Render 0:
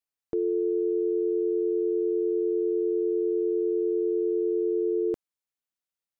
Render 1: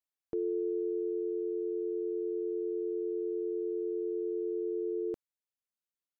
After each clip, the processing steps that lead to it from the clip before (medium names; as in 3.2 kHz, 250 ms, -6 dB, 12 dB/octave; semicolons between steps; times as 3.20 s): gain riding within 4 dB 2 s; trim -8 dB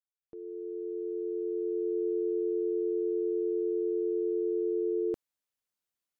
fade-in on the opening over 2.05 s; trim +4 dB